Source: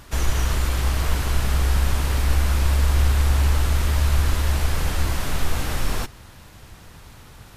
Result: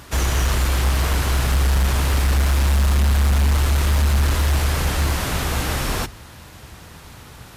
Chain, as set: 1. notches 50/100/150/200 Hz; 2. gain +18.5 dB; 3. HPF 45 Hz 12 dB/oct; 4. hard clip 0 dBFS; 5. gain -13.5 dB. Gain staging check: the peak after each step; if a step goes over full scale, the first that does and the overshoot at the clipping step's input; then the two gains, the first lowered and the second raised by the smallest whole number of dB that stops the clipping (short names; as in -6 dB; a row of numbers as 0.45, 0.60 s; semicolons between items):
-7.5, +11.0, +8.5, 0.0, -13.5 dBFS; step 2, 8.5 dB; step 2 +9.5 dB, step 5 -4.5 dB